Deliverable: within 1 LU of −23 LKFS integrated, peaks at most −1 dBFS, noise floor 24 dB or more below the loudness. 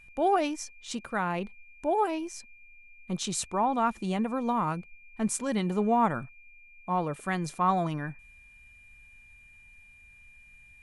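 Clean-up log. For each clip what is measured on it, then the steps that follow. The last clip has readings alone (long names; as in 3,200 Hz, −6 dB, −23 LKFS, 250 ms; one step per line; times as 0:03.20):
interfering tone 2,400 Hz; level of the tone −53 dBFS; integrated loudness −29.5 LKFS; sample peak −13.5 dBFS; target loudness −23.0 LKFS
→ notch filter 2,400 Hz, Q 30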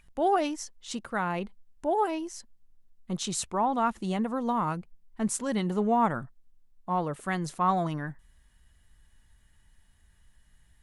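interfering tone none found; integrated loudness −29.5 LKFS; sample peak −13.5 dBFS; target loudness −23.0 LKFS
→ level +6.5 dB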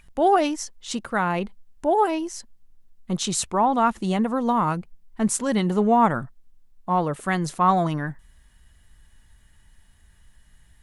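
integrated loudness −23.0 LKFS; sample peak −7.0 dBFS; background noise floor −56 dBFS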